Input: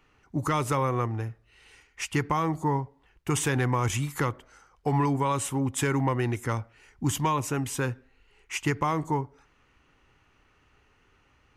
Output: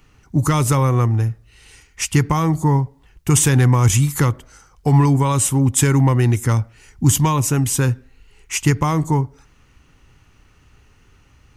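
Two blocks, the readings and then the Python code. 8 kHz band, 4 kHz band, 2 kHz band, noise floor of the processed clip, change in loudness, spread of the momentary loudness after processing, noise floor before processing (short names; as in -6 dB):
+14.0 dB, +9.0 dB, +5.5 dB, -54 dBFS, +11.0 dB, 11 LU, -65 dBFS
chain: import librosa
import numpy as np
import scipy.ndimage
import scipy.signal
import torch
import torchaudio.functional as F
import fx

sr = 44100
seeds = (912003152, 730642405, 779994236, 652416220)

y = fx.bass_treble(x, sr, bass_db=10, treble_db=10)
y = y * librosa.db_to_amplitude(5.0)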